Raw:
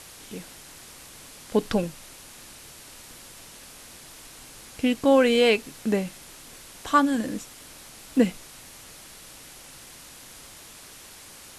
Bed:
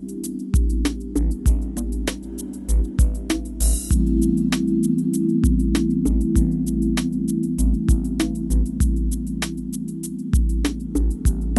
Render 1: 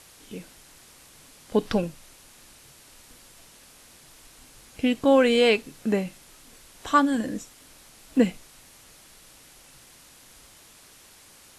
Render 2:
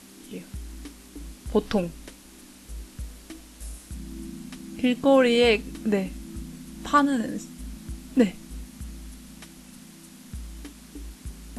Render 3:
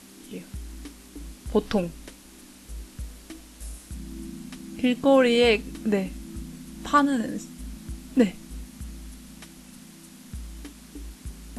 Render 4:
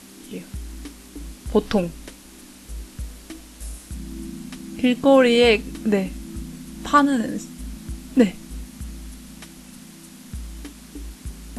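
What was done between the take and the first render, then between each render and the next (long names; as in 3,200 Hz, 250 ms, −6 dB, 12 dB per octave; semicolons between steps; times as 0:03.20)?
noise reduction from a noise print 6 dB
mix in bed −20 dB
no processing that can be heard
level +4 dB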